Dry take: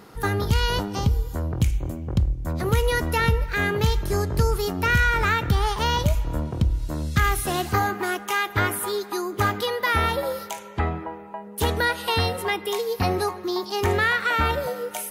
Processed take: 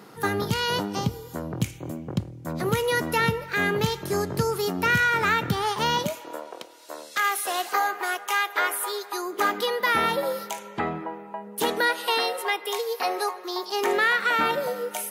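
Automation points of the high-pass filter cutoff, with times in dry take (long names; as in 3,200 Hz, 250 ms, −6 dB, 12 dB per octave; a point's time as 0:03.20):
high-pass filter 24 dB per octave
0:05.90 130 Hz
0:06.43 470 Hz
0:09.09 470 Hz
0:09.86 150 Hz
0:11.33 150 Hz
0:12.44 440 Hz
0:13.51 440 Hz
0:14.36 180 Hz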